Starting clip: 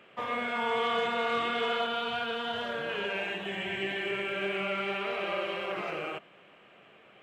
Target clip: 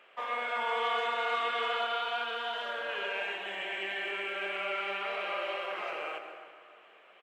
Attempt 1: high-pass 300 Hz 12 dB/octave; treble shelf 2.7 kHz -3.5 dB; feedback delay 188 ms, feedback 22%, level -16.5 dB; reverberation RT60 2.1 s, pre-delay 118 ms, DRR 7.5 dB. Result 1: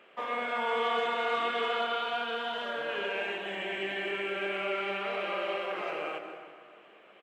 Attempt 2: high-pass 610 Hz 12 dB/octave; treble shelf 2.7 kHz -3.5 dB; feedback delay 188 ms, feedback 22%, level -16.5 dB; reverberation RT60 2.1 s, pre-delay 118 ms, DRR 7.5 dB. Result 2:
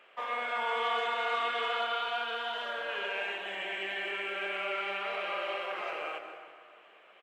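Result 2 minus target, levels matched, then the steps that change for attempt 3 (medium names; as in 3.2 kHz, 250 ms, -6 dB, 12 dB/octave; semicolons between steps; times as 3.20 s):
echo 53 ms late
change: feedback delay 135 ms, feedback 22%, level -16.5 dB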